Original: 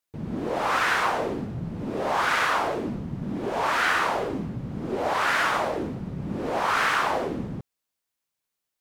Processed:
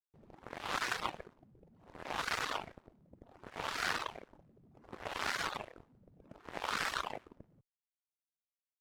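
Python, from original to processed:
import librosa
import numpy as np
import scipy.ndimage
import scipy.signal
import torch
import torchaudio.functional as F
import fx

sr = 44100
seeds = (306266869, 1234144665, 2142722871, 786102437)

y = fx.cheby_harmonics(x, sr, harmonics=(3, 4, 6, 7), levels_db=(-13, -27, -43, -24), full_scale_db=-10.0)
y = fx.dereverb_blind(y, sr, rt60_s=0.87)
y = y * librosa.db_to_amplitude(-4.5)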